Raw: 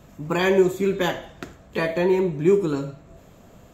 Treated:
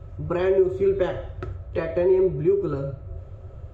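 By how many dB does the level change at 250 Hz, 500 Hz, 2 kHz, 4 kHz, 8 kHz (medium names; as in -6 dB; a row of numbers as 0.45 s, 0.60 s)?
-2.0 dB, 0.0 dB, -9.5 dB, under -10 dB, no reading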